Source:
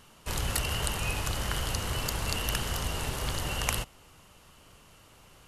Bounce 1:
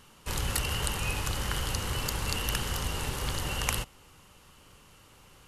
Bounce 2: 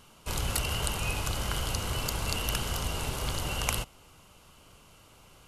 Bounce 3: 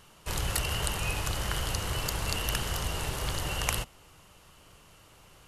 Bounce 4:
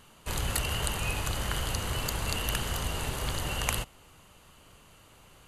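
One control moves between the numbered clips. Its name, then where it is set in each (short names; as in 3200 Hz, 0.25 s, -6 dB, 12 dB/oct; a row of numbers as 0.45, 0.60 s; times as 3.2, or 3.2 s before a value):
notch, frequency: 660, 1800, 240, 5400 Hz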